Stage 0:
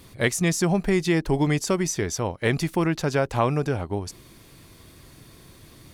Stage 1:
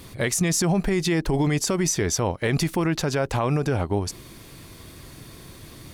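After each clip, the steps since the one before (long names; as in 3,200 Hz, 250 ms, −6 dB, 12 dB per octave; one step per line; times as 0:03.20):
brickwall limiter −19 dBFS, peak gain reduction 10 dB
level +5.5 dB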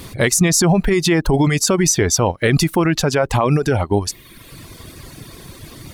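reverb reduction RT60 0.98 s
level +8.5 dB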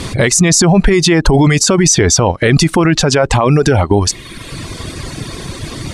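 low-pass filter 9,200 Hz 24 dB per octave
boost into a limiter +13.5 dB
level −1 dB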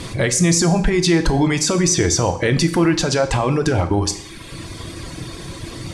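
convolution reverb RT60 0.70 s, pre-delay 3 ms, DRR 7 dB
level −7.5 dB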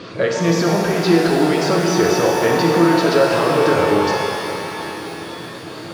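loudspeaker in its box 230–4,400 Hz, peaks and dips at 270 Hz −3 dB, 480 Hz +5 dB, 880 Hz −8 dB, 1,300 Hz +5 dB, 2,100 Hz −8 dB, 3,500 Hz −7 dB
reverb with rising layers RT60 3.5 s, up +12 semitones, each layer −8 dB, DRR −1 dB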